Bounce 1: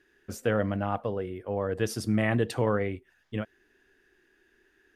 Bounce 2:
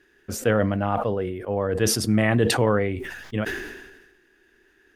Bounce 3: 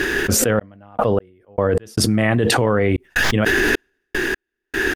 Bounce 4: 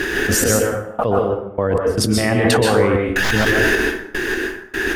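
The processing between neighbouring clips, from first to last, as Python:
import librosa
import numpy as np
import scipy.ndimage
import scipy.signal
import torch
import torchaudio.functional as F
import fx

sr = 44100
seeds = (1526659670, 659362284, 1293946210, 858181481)

y1 = fx.sustainer(x, sr, db_per_s=47.0)
y1 = F.gain(torch.from_numpy(y1), 5.0).numpy()
y2 = fx.step_gate(y1, sr, bpm=76, pattern='xxx..x..x.xxxxx.', floor_db=-60.0, edge_ms=4.5)
y2 = fx.env_flatten(y2, sr, amount_pct=100)
y3 = fx.rev_plate(y2, sr, seeds[0], rt60_s=0.73, hf_ratio=0.65, predelay_ms=115, drr_db=0.0)
y3 = F.gain(torch.from_numpy(y3), -1.0).numpy()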